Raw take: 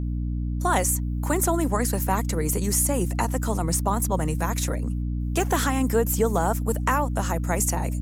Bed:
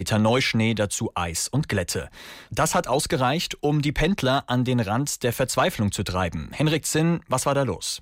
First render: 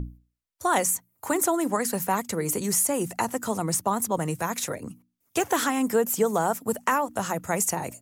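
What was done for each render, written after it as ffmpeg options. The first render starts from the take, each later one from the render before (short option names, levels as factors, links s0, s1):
-af "bandreject=f=60:t=h:w=6,bandreject=f=120:t=h:w=6,bandreject=f=180:t=h:w=6,bandreject=f=240:t=h:w=6,bandreject=f=300:t=h:w=6"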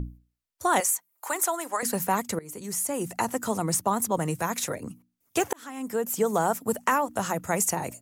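-filter_complex "[0:a]asettb=1/sr,asplit=3[s0][s1][s2];[s0]atrim=end=0.804[s3];[s1]atrim=start=0.8:end=1.83,asetpts=PTS-STARTPTS,afade=t=in:d=0.004:c=qsin,afade=t=out:st=1.026:d=0.004:c=qsin,highpass=700[s4];[s2]atrim=start=1.826[s5];[s3][s4]acrossfade=d=0.004:c1=hsin:c2=qsin[s6];[s6][s5]acrossfade=d=0.004:c1=qsin:c2=hsin,asplit=3[s7][s8][s9];[s7]atrim=end=2.39,asetpts=PTS-STARTPTS,afade=t=out:st=2.386:d=0.004:c=hsin:silence=0.1[s10];[s8]atrim=start=2.39:end=5.53,asetpts=PTS-STARTPTS,afade=t=in:d=0.9:silence=0.1,afade=t=out:st=3.136:d=0.004:c=hsin[s11];[s9]atrim=start=5.53,asetpts=PTS-STARTPTS,afade=t=in:d=0.85[s12];[s10][s11][s12]concat=n=3:v=0:a=1"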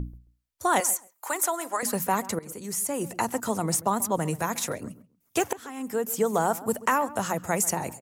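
-filter_complex "[0:a]asplit=2[s0][s1];[s1]adelay=135,lowpass=f=1800:p=1,volume=0.141,asplit=2[s2][s3];[s3]adelay=135,lowpass=f=1800:p=1,volume=0.18[s4];[s0][s2][s4]amix=inputs=3:normalize=0"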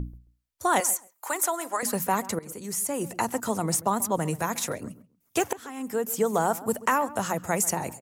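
-af anull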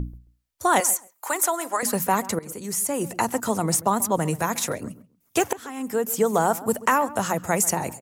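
-af "volume=1.5"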